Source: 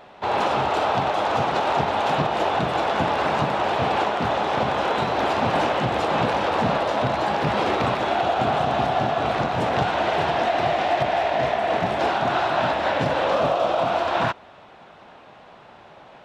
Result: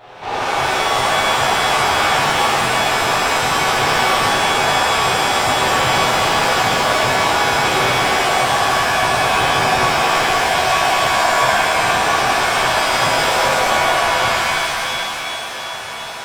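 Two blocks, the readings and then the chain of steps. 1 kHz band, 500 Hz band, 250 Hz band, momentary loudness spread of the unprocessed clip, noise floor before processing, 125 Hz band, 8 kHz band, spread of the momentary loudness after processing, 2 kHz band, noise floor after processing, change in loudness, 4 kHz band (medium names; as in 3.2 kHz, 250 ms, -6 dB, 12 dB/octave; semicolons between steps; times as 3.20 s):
+6.0 dB, +2.5 dB, +1.0 dB, 1 LU, -47 dBFS, +2.0 dB, +23.0 dB, 4 LU, +12.0 dB, -27 dBFS, +7.0 dB, +13.5 dB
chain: peaking EQ 220 Hz -12 dB 0.53 oct; band-stop 580 Hz, Q 12; in parallel at 0 dB: peak limiter -21.5 dBFS, peak gain reduction 11 dB; on the sum: saturation -22 dBFS, distortion -10 dB; on a send: thinning echo 696 ms, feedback 73%, high-pass 410 Hz, level -10.5 dB; on the sum: pitch-shifted reverb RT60 2 s, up +7 st, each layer -2 dB, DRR -9.5 dB; trim -4.5 dB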